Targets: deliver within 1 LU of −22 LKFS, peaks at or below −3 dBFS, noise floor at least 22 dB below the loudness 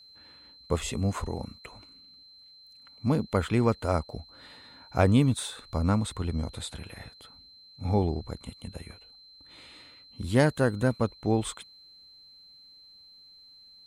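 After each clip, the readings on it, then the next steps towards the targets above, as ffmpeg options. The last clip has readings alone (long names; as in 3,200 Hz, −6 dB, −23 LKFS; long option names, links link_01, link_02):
interfering tone 4,100 Hz; level of the tone −51 dBFS; integrated loudness −28.0 LKFS; sample peak −8.0 dBFS; target loudness −22.0 LKFS
→ -af "bandreject=frequency=4100:width=30"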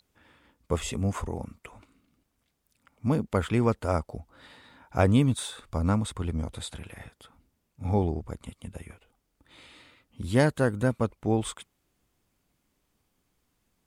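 interfering tone none found; integrated loudness −28.0 LKFS; sample peak −8.0 dBFS; target loudness −22.0 LKFS
→ -af "volume=6dB,alimiter=limit=-3dB:level=0:latency=1"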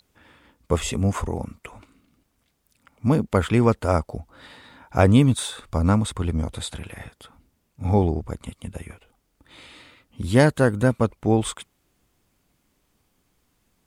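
integrated loudness −22.0 LKFS; sample peak −3.0 dBFS; background noise floor −70 dBFS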